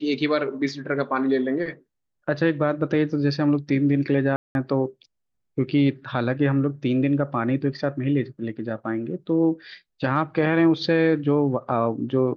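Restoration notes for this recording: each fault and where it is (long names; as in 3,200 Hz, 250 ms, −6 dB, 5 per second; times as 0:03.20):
0:04.36–0:04.55: drop-out 191 ms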